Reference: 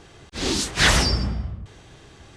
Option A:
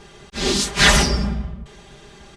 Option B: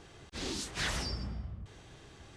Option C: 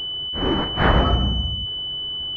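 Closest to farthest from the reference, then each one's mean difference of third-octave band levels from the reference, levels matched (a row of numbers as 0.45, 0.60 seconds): A, B, C; 2.0, 5.5, 8.0 decibels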